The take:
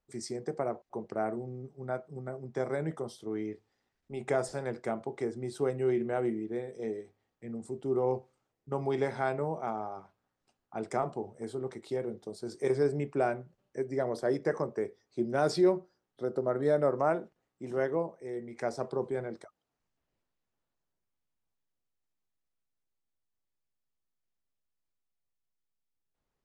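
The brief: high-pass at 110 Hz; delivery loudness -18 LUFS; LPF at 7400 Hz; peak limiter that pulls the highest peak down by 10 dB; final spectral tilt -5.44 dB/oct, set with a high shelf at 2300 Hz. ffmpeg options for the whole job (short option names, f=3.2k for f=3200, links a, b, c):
-af "highpass=110,lowpass=7.4k,highshelf=f=2.3k:g=4.5,volume=19dB,alimiter=limit=-6.5dB:level=0:latency=1"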